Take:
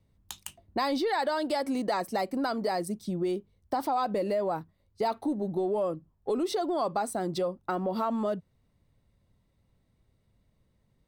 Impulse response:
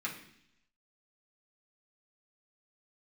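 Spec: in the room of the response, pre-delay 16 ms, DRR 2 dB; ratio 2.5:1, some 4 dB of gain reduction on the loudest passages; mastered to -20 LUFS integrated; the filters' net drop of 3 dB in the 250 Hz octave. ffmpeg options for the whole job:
-filter_complex "[0:a]equalizer=f=250:t=o:g=-4,acompressor=threshold=-31dB:ratio=2.5,asplit=2[a][b];[1:a]atrim=start_sample=2205,adelay=16[c];[b][c]afir=irnorm=-1:irlink=0,volume=-5.5dB[d];[a][d]amix=inputs=2:normalize=0,volume=13.5dB"

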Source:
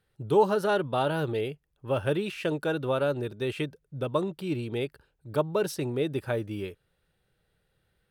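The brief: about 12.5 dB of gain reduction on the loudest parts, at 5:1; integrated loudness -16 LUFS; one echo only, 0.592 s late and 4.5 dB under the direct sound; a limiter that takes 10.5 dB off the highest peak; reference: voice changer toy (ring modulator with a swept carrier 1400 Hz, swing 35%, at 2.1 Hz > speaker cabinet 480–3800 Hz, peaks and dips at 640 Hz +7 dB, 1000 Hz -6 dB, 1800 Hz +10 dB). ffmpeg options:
-af "acompressor=threshold=-30dB:ratio=5,alimiter=level_in=5dB:limit=-24dB:level=0:latency=1,volume=-5dB,aecho=1:1:592:0.596,aeval=exprs='val(0)*sin(2*PI*1400*n/s+1400*0.35/2.1*sin(2*PI*2.1*n/s))':c=same,highpass=480,equalizer=f=640:t=q:w=4:g=7,equalizer=f=1k:t=q:w=4:g=-6,equalizer=f=1.8k:t=q:w=4:g=10,lowpass=f=3.8k:w=0.5412,lowpass=f=3.8k:w=1.3066,volume=19dB"

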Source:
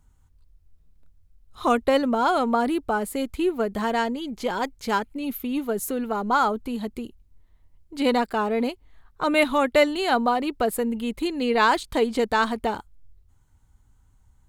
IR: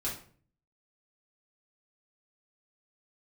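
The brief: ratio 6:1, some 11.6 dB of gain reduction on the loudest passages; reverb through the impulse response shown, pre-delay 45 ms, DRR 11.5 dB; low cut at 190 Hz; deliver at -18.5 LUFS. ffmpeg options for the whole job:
-filter_complex "[0:a]highpass=190,acompressor=threshold=-27dB:ratio=6,asplit=2[a][b];[1:a]atrim=start_sample=2205,adelay=45[c];[b][c]afir=irnorm=-1:irlink=0,volume=-15dB[d];[a][d]amix=inputs=2:normalize=0,volume=13dB"

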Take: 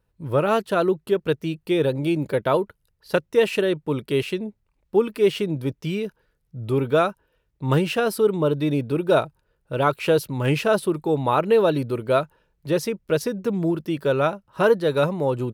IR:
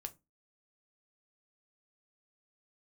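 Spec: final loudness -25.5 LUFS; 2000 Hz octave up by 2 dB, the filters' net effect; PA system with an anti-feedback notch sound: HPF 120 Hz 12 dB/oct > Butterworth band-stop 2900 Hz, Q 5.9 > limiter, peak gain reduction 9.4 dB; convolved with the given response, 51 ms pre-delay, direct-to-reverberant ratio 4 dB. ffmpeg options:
-filter_complex "[0:a]equalizer=f=2k:t=o:g=3.5,asplit=2[a][b];[1:a]atrim=start_sample=2205,adelay=51[c];[b][c]afir=irnorm=-1:irlink=0,volume=-0.5dB[d];[a][d]amix=inputs=2:normalize=0,highpass=120,asuperstop=centerf=2900:order=8:qfactor=5.9,volume=-1.5dB,alimiter=limit=-14.5dB:level=0:latency=1"

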